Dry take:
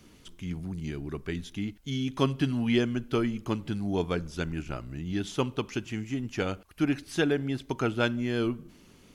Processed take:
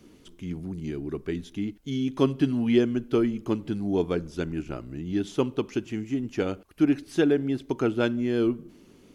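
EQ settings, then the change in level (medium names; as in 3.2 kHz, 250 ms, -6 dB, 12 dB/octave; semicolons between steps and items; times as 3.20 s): peaking EQ 340 Hz +9 dB 1.6 oct; -3.0 dB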